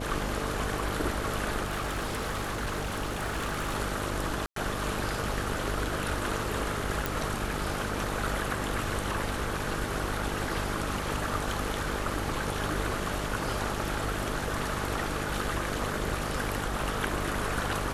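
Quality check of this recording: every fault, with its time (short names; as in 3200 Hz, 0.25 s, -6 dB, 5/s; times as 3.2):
buzz 50 Hz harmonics 13 -36 dBFS
1.63–3.74 clipped -27.5 dBFS
4.46–4.56 gap 0.103 s
7.06 pop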